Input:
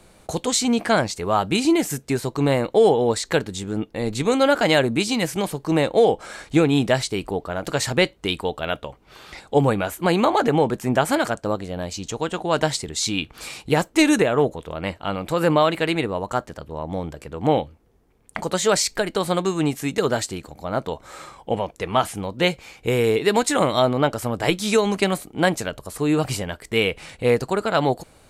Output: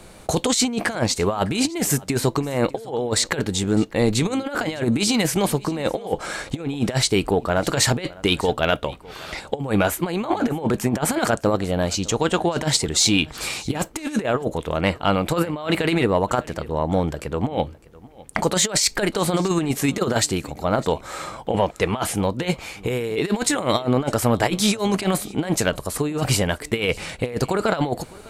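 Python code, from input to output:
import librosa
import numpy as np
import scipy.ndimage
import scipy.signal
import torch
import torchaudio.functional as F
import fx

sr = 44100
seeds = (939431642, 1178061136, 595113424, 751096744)

p1 = fx.over_compress(x, sr, threshold_db=-23.0, ratio=-0.5)
p2 = 10.0 ** (-7.0 / 20.0) * np.tanh(p1 / 10.0 ** (-7.0 / 20.0))
p3 = p2 + fx.echo_single(p2, sr, ms=606, db=-21.5, dry=0)
y = p3 * 10.0 ** (3.5 / 20.0)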